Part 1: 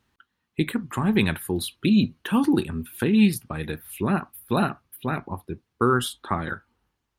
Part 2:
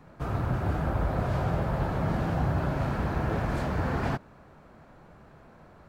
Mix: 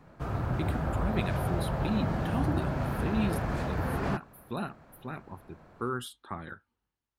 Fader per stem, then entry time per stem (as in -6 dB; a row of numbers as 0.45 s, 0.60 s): -12.5 dB, -2.5 dB; 0.00 s, 0.00 s